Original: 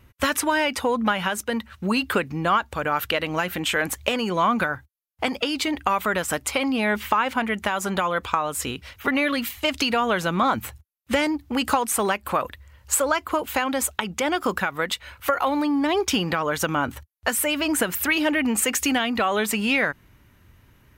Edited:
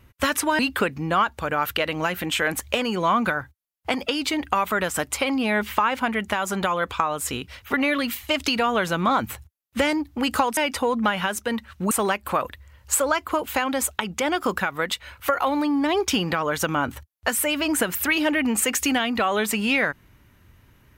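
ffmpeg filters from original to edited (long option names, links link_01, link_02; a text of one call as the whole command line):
ffmpeg -i in.wav -filter_complex "[0:a]asplit=4[link_01][link_02][link_03][link_04];[link_01]atrim=end=0.592[link_05];[link_02]atrim=start=1.928:end=11.912[link_06];[link_03]atrim=start=0.588:end=1.932[link_07];[link_04]atrim=start=11.908[link_08];[link_05][link_06]acrossfade=duration=0.004:curve1=hsin:curve2=hsin[link_09];[link_09][link_07]acrossfade=duration=0.004:curve1=hsin:curve2=hsin[link_10];[link_10][link_08]acrossfade=duration=0.004:curve1=hsin:curve2=hsin" out.wav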